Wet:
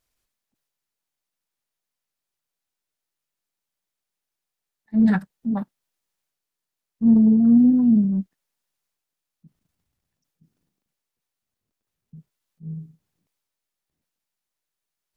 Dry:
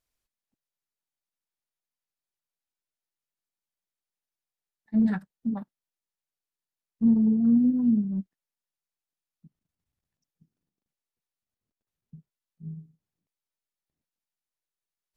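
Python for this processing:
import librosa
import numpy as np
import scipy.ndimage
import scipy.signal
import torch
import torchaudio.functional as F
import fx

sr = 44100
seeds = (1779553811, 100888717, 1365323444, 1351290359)

y = fx.transient(x, sr, attack_db=-5, sustain_db=4)
y = y * librosa.db_to_amplitude(6.5)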